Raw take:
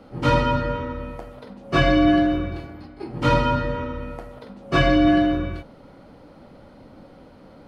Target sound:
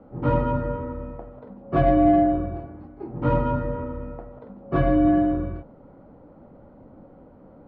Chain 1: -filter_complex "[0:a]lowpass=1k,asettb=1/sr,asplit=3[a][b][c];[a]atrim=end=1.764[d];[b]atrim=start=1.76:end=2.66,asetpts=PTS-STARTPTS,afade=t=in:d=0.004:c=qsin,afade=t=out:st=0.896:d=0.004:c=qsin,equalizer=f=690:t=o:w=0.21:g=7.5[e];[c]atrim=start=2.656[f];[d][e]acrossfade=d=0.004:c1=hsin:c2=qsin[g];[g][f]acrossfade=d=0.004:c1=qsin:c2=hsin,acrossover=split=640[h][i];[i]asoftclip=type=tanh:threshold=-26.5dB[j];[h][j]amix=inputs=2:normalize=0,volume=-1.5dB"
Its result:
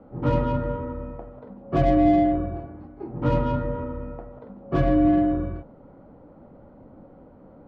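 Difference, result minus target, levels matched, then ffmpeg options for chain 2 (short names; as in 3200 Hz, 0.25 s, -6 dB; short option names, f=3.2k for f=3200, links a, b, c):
soft clip: distortion +11 dB
-filter_complex "[0:a]lowpass=1k,asettb=1/sr,asplit=3[a][b][c];[a]atrim=end=1.764[d];[b]atrim=start=1.76:end=2.66,asetpts=PTS-STARTPTS,afade=t=in:d=0.004:c=qsin,afade=t=out:st=0.896:d=0.004:c=qsin,equalizer=f=690:t=o:w=0.21:g=7.5[e];[c]atrim=start=2.656[f];[d][e]acrossfade=d=0.004:c1=hsin:c2=qsin[g];[g][f]acrossfade=d=0.004:c1=qsin:c2=hsin,acrossover=split=640[h][i];[i]asoftclip=type=tanh:threshold=-17.5dB[j];[h][j]amix=inputs=2:normalize=0,volume=-1.5dB"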